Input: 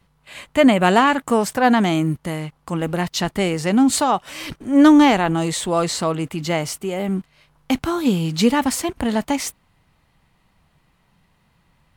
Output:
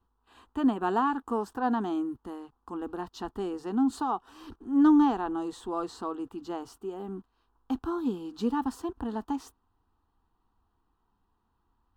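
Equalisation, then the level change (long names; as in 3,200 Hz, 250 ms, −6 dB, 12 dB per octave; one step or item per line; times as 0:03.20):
high-shelf EQ 5,000 Hz −12 dB
parametric band 8,100 Hz −8 dB 2.2 octaves
phaser with its sweep stopped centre 580 Hz, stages 6
−8.5 dB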